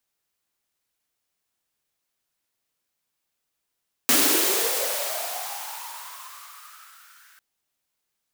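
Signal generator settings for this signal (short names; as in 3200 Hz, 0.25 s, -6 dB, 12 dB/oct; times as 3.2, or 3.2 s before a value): swept filtered noise white, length 3.30 s highpass, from 230 Hz, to 1500 Hz, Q 7.2, linear, gain ramp -39 dB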